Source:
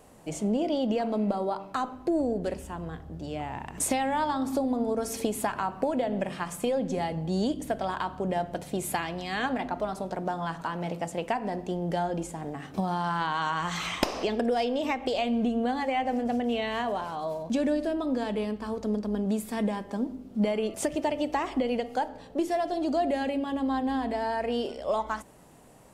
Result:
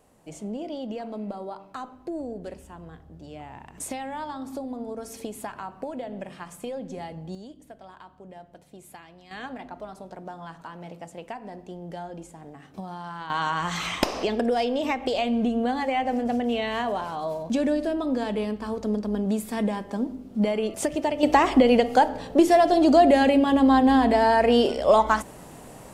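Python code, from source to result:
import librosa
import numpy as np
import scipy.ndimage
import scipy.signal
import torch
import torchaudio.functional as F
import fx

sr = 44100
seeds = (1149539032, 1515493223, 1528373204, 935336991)

y = fx.gain(x, sr, db=fx.steps((0.0, -6.5), (7.35, -16.0), (9.31, -8.0), (13.3, 2.5), (21.23, 10.5)))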